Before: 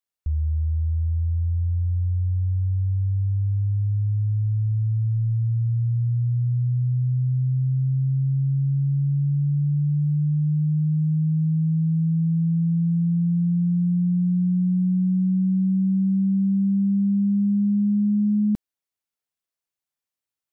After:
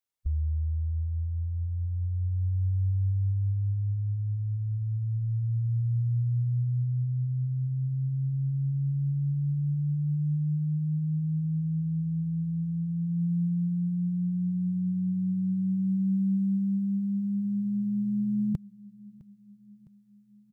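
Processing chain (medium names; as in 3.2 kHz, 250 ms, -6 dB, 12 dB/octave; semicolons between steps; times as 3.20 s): formant shift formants -5 st; on a send: feedback delay 659 ms, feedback 59%, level -22.5 dB; on the sum: trim -1.5 dB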